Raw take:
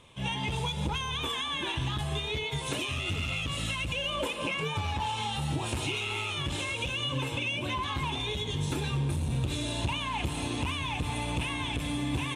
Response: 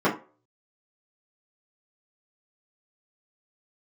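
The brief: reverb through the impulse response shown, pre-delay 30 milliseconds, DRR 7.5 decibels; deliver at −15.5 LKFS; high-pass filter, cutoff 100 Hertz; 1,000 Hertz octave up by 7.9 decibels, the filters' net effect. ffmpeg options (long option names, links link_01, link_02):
-filter_complex "[0:a]highpass=100,equalizer=frequency=1000:width_type=o:gain=9,asplit=2[link_01][link_02];[1:a]atrim=start_sample=2205,adelay=30[link_03];[link_02][link_03]afir=irnorm=-1:irlink=0,volume=-24dB[link_04];[link_01][link_04]amix=inputs=2:normalize=0,volume=13dB"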